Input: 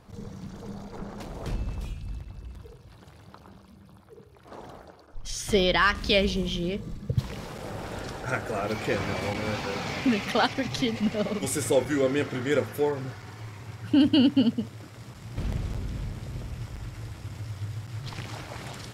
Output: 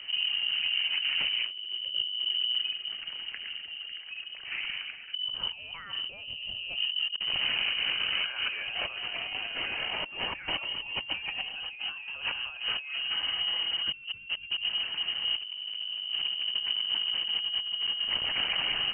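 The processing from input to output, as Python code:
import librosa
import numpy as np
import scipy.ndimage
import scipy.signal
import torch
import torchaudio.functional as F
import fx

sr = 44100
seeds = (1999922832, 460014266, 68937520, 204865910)

y = fx.low_shelf(x, sr, hz=160.0, db=7.5)
y = fx.over_compress(y, sr, threshold_db=-35.0, ratio=-1.0)
y = fx.freq_invert(y, sr, carrier_hz=3000)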